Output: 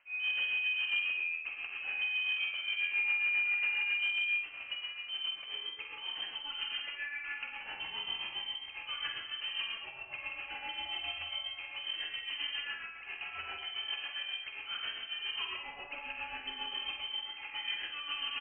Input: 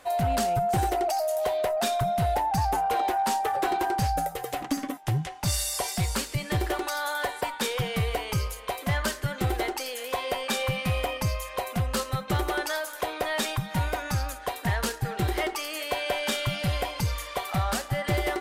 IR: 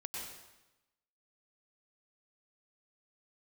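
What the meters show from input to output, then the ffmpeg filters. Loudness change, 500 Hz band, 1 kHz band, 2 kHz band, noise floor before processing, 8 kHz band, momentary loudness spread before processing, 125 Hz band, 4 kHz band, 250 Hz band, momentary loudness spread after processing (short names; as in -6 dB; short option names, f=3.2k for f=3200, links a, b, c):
-6.5 dB, -30.0 dB, -21.5 dB, 0.0 dB, -41 dBFS, under -40 dB, 5 LU, under -40 dB, 0.0 dB, -30.5 dB, 10 LU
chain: -filter_complex "[1:a]atrim=start_sample=2205,asetrate=66150,aresample=44100[a];[0:a][a]afir=irnorm=-1:irlink=0,lowpass=f=2.7k:t=q:w=0.5098,lowpass=f=2.7k:t=q:w=0.6013,lowpass=f=2.7k:t=q:w=0.9,lowpass=f=2.7k:t=q:w=2.563,afreqshift=-3200,tremolo=f=7.4:d=0.67,aecho=1:1:48|60:0.376|0.282,volume=-5.5dB"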